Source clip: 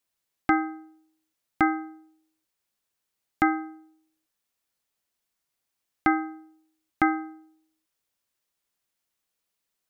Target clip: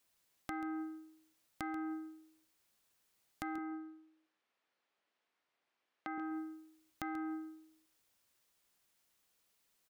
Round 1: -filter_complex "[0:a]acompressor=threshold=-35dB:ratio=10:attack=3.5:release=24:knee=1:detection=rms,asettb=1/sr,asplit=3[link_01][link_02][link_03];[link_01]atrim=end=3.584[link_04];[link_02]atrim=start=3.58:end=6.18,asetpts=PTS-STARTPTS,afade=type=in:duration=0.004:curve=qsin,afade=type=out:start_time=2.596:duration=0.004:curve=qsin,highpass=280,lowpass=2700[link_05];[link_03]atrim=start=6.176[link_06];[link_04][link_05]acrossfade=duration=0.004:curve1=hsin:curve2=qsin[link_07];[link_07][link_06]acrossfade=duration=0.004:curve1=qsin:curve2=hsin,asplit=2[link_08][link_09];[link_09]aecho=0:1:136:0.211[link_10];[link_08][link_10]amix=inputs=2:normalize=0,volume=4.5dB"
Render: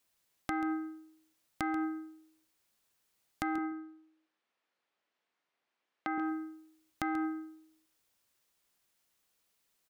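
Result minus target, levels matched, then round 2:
downward compressor: peak gain reduction −7 dB
-filter_complex "[0:a]acompressor=threshold=-43dB:ratio=10:attack=3.5:release=24:knee=1:detection=rms,asettb=1/sr,asplit=3[link_01][link_02][link_03];[link_01]atrim=end=3.584[link_04];[link_02]atrim=start=3.58:end=6.18,asetpts=PTS-STARTPTS,afade=type=in:duration=0.004:curve=qsin,afade=type=out:start_time=2.596:duration=0.004:curve=qsin,highpass=280,lowpass=2700[link_05];[link_03]atrim=start=6.176[link_06];[link_04][link_05]acrossfade=duration=0.004:curve1=hsin:curve2=qsin[link_07];[link_07][link_06]acrossfade=duration=0.004:curve1=qsin:curve2=hsin,asplit=2[link_08][link_09];[link_09]aecho=0:1:136:0.211[link_10];[link_08][link_10]amix=inputs=2:normalize=0,volume=4.5dB"

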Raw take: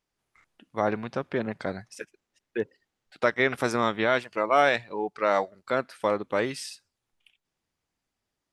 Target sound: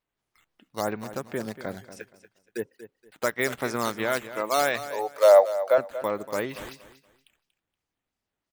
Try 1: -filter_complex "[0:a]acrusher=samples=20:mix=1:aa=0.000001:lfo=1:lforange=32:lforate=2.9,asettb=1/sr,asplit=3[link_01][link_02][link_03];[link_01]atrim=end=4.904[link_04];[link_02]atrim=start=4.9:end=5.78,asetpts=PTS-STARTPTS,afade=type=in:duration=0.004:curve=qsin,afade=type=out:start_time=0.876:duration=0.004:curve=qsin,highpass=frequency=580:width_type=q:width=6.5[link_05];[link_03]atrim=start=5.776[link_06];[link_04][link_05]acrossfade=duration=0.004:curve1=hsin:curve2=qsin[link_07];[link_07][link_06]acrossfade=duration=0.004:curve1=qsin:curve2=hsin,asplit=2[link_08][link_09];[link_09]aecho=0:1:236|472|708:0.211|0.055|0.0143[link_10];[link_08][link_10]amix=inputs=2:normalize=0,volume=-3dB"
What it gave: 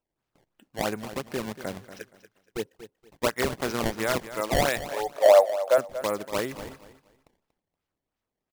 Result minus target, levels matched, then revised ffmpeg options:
sample-and-hold swept by an LFO: distortion +13 dB
-filter_complex "[0:a]acrusher=samples=5:mix=1:aa=0.000001:lfo=1:lforange=8:lforate=2.9,asettb=1/sr,asplit=3[link_01][link_02][link_03];[link_01]atrim=end=4.904[link_04];[link_02]atrim=start=4.9:end=5.78,asetpts=PTS-STARTPTS,afade=type=in:duration=0.004:curve=qsin,afade=type=out:start_time=0.876:duration=0.004:curve=qsin,highpass=frequency=580:width_type=q:width=6.5[link_05];[link_03]atrim=start=5.776[link_06];[link_04][link_05]acrossfade=duration=0.004:curve1=hsin:curve2=qsin[link_07];[link_07][link_06]acrossfade=duration=0.004:curve1=qsin:curve2=hsin,asplit=2[link_08][link_09];[link_09]aecho=0:1:236|472|708:0.211|0.055|0.0143[link_10];[link_08][link_10]amix=inputs=2:normalize=0,volume=-3dB"

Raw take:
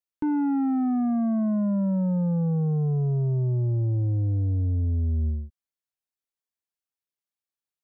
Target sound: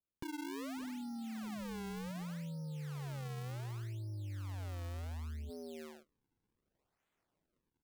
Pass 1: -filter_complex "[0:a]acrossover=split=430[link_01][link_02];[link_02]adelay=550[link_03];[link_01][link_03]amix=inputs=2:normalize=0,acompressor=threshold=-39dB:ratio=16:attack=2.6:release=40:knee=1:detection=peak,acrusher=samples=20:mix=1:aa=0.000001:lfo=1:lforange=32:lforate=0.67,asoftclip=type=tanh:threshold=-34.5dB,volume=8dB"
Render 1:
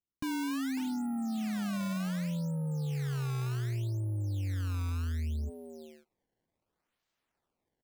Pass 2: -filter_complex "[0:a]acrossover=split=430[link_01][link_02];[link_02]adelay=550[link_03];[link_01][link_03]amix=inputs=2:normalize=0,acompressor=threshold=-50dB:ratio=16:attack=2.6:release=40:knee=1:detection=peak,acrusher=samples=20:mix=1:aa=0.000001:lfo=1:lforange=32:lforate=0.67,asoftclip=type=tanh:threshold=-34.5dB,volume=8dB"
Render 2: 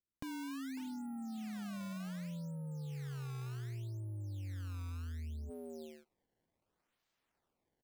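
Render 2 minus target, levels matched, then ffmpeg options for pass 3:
sample-and-hold swept by an LFO: distortion −7 dB
-filter_complex "[0:a]acrossover=split=430[link_01][link_02];[link_02]adelay=550[link_03];[link_01][link_03]amix=inputs=2:normalize=0,acompressor=threshold=-50dB:ratio=16:attack=2.6:release=40:knee=1:detection=peak,acrusher=samples=41:mix=1:aa=0.000001:lfo=1:lforange=65.6:lforate=0.67,asoftclip=type=tanh:threshold=-34.5dB,volume=8dB"

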